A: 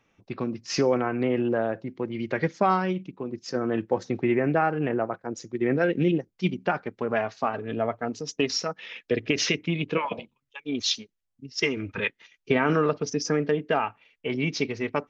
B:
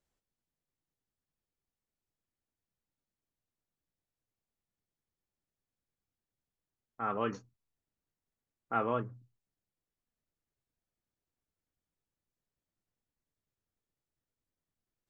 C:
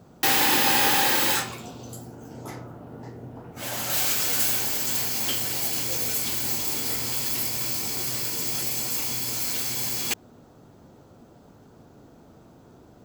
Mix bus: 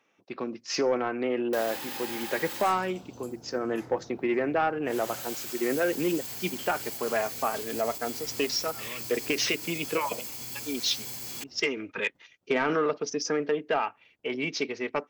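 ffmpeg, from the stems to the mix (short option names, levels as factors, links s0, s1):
-filter_complex "[0:a]highpass=300,volume=0.944,asplit=2[s0][s1];[1:a]volume=0.376[s2];[2:a]adelay=1300,volume=0.355[s3];[s1]apad=whole_len=665535[s4];[s2][s4]sidechaincompress=threshold=0.0224:ratio=8:attack=16:release=280[s5];[s5][s3]amix=inputs=2:normalize=0,agate=range=0.0282:threshold=0.00158:ratio=16:detection=peak,alimiter=level_in=1.5:limit=0.0631:level=0:latency=1:release=93,volume=0.668,volume=1[s6];[s0][s6]amix=inputs=2:normalize=0,asoftclip=type=tanh:threshold=0.158"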